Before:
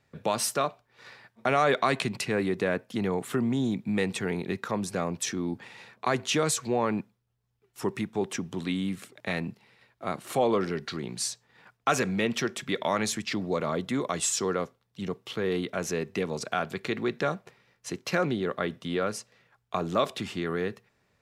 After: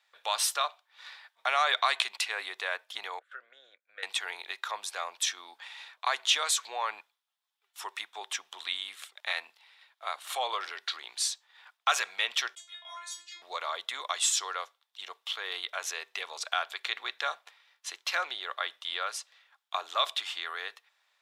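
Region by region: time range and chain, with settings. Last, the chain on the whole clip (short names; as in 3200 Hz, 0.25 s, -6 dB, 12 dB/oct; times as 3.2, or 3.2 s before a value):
3.19–4.03 double band-pass 900 Hz, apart 1.5 oct + gate -52 dBFS, range -14 dB
12.55–13.42 bell 7500 Hz +9.5 dB 0.96 oct + metallic resonator 340 Hz, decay 0.44 s, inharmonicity 0.002
whole clip: HPF 800 Hz 24 dB/oct; bell 3500 Hz +9 dB 0.46 oct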